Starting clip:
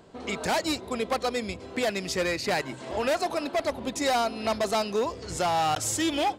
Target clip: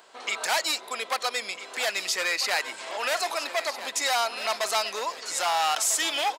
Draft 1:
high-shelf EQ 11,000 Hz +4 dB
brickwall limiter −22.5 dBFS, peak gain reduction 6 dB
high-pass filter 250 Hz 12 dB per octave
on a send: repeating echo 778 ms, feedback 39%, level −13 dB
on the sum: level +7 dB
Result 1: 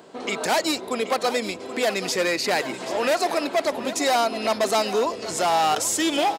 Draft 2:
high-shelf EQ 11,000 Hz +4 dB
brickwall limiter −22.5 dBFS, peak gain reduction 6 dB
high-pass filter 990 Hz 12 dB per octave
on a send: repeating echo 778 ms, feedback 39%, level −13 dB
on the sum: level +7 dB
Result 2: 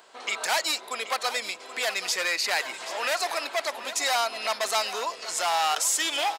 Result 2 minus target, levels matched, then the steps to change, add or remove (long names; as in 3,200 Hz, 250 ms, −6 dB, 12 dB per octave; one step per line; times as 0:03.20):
echo 521 ms early
change: repeating echo 1,299 ms, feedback 39%, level −13 dB